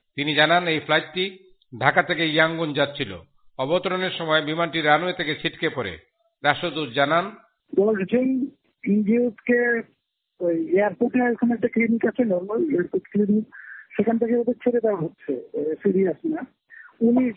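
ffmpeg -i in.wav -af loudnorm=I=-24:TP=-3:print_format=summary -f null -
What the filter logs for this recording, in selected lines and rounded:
Input Integrated:    -22.8 LUFS
Input True Peak:      -2.3 dBTP
Input LRA:             1.7 LU
Input Threshold:     -33.2 LUFS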